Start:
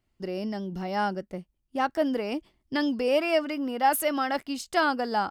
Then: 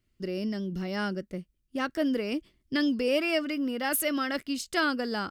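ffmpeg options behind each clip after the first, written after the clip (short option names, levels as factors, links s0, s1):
-af "equalizer=f=820:w=2:g=-14.5,volume=1.19"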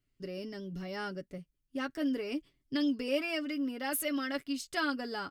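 -af "aecho=1:1:7.1:0.57,volume=0.447"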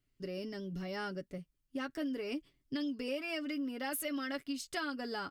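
-af "acompressor=threshold=0.02:ratio=6"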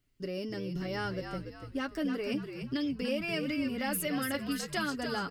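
-filter_complex "[0:a]asplit=6[s0][s1][s2][s3][s4][s5];[s1]adelay=289,afreqshift=-67,volume=0.447[s6];[s2]adelay=578,afreqshift=-134,volume=0.178[s7];[s3]adelay=867,afreqshift=-201,volume=0.0716[s8];[s4]adelay=1156,afreqshift=-268,volume=0.0285[s9];[s5]adelay=1445,afreqshift=-335,volume=0.0115[s10];[s0][s6][s7][s8][s9][s10]amix=inputs=6:normalize=0,volume=1.58"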